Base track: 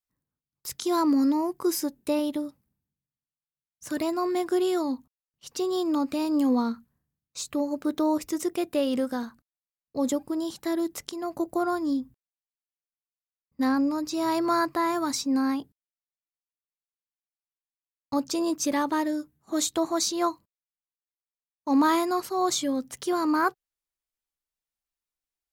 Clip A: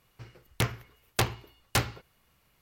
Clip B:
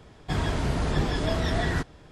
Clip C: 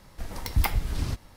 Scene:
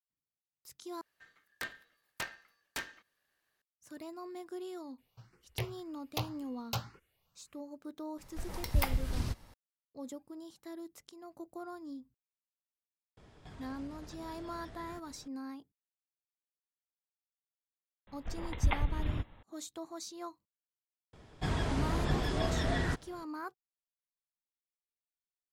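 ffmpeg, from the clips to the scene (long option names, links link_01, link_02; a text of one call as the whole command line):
ffmpeg -i bed.wav -i cue0.wav -i cue1.wav -i cue2.wav -filter_complex "[1:a]asplit=2[link_01][link_02];[3:a]asplit=2[link_03][link_04];[2:a]asplit=2[link_05][link_06];[0:a]volume=-18dB[link_07];[link_01]aeval=exprs='val(0)*sin(2*PI*1700*n/s)':channel_layout=same[link_08];[link_02]asplit=2[link_09][link_10];[link_10]afreqshift=1.9[link_11];[link_09][link_11]amix=inputs=2:normalize=1[link_12];[link_05]acompressor=threshold=-40dB:ratio=6:attack=3.2:release=140:knee=1:detection=peak[link_13];[link_04]aresample=8000,aresample=44100[link_14];[link_07]asplit=2[link_15][link_16];[link_15]atrim=end=1.014[link_17];[link_08]atrim=end=2.61,asetpts=PTS-STARTPTS,volume=-10.5dB[link_18];[link_16]atrim=start=3.616[link_19];[link_12]atrim=end=2.61,asetpts=PTS-STARTPTS,volume=-7.5dB,afade=type=in:duration=0.004:curve=hsin,afade=type=out:start_time=2.606:duration=0.004:curve=hsin,adelay=4980[link_20];[link_03]atrim=end=1.36,asetpts=PTS-STARTPTS,volume=-5.5dB,afade=type=in:duration=0.004:curve=hsin,afade=type=out:start_time=1.356:duration=0.004:curve=hsin,adelay=360738S[link_21];[link_13]atrim=end=2.11,asetpts=PTS-STARTPTS,volume=-8.5dB,afade=type=in:duration=0.004:curve=hsin,afade=type=out:start_time=2.106:duration=0.004:curve=hsin,adelay=13170[link_22];[link_14]atrim=end=1.36,asetpts=PTS-STARTPTS,volume=-5dB,afade=type=in:duration=0.004:curve=hsin,afade=type=out:start_time=1.356:duration=0.004:curve=hsin,adelay=18070[link_23];[link_06]atrim=end=2.11,asetpts=PTS-STARTPTS,volume=-6dB,afade=type=in:duration=0.004:curve=hsin,afade=type=out:start_time=2.106:duration=0.004:curve=hsin,adelay=21130[link_24];[link_17][link_18]acrossfade=duration=0.004:curve1=hsin:curve2=hsin[link_25];[link_25][link_19]acrossfade=duration=0.004:curve1=hsin:curve2=hsin[link_26];[link_26][link_20][link_21][link_22][link_23][link_24]amix=inputs=6:normalize=0" out.wav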